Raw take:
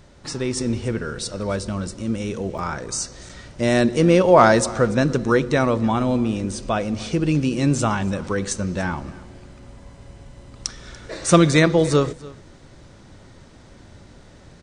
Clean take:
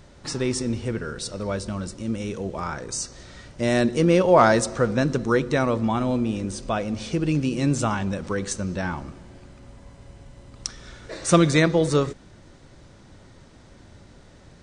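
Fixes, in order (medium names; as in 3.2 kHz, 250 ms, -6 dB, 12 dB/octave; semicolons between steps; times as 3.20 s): interpolate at 2.58/3.29 s, 4.7 ms; inverse comb 289 ms -21 dB; trim 0 dB, from 0.57 s -3 dB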